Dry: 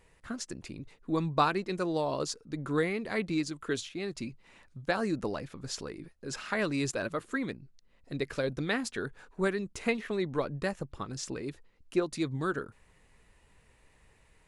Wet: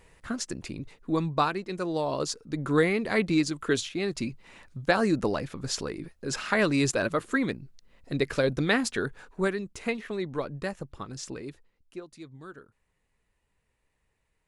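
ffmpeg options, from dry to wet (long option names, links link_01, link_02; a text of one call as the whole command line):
ffmpeg -i in.wav -af "volume=13.5dB,afade=type=out:start_time=0.8:duration=0.81:silence=0.446684,afade=type=in:start_time=1.61:duration=1.31:silence=0.398107,afade=type=out:start_time=8.91:duration=0.78:silence=0.446684,afade=type=out:start_time=11.35:duration=0.66:silence=0.237137" out.wav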